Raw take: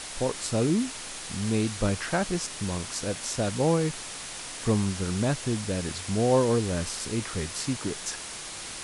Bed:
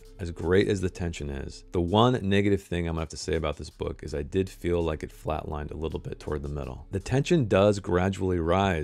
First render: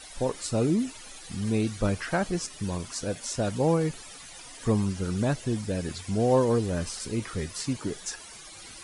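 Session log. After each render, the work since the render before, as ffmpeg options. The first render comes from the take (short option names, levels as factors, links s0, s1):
-af "afftdn=nr=14:nf=-39"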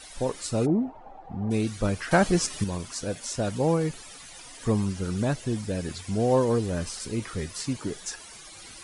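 -filter_complex "[0:a]asplit=3[s0][s1][s2];[s0]afade=t=out:st=0.65:d=0.02[s3];[s1]lowpass=f=780:t=q:w=5.7,afade=t=in:st=0.65:d=0.02,afade=t=out:st=1.5:d=0.02[s4];[s2]afade=t=in:st=1.5:d=0.02[s5];[s3][s4][s5]amix=inputs=3:normalize=0,asettb=1/sr,asplit=3[s6][s7][s8];[s6]atrim=end=2.114[s9];[s7]atrim=start=2.11:end=2.64,asetpts=PTS-STARTPTS,afade=t=in:d=0.004:c=qsin,afade=t=out:st=0.526:d=0.004:c=qsin,acontrast=72[s10];[s8]atrim=start=2.636[s11];[s9][s10]acrossfade=d=0.004:c1=hsin:c2=qsin[s12];[s12][s11]acrossfade=d=0.004:c1=qsin:c2=hsin"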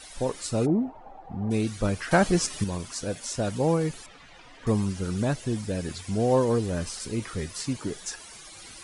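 -filter_complex "[0:a]asettb=1/sr,asplit=3[s0][s1][s2];[s0]atrim=end=4.064[s3];[s1]atrim=start=4.06:end=4.67,asetpts=PTS-STARTPTS,afade=t=in:d=0.004:c=qsin,afade=t=out:st=0.606:d=0.004:c=qsin,lowpass=2800[s4];[s2]atrim=start=4.666[s5];[s3][s4]acrossfade=d=0.004:c1=hsin:c2=qsin[s6];[s6][s5]acrossfade=d=0.004:c1=qsin:c2=hsin"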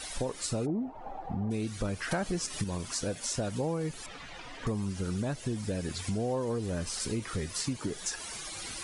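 -filter_complex "[0:a]asplit=2[s0][s1];[s1]alimiter=limit=0.106:level=0:latency=1,volume=0.75[s2];[s0][s2]amix=inputs=2:normalize=0,acompressor=threshold=0.0282:ratio=4"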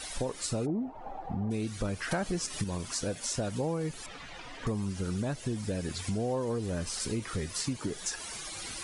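-af anull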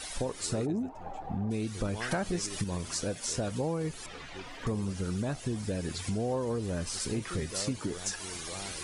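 -filter_complex "[1:a]volume=0.0891[s0];[0:a][s0]amix=inputs=2:normalize=0"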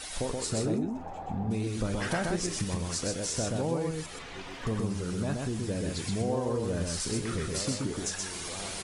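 -filter_complex "[0:a]asplit=2[s0][s1];[s1]adelay=36,volume=0.211[s2];[s0][s2]amix=inputs=2:normalize=0,aecho=1:1:126:0.708"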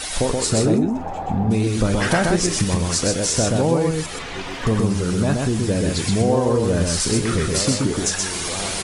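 -af "volume=3.98"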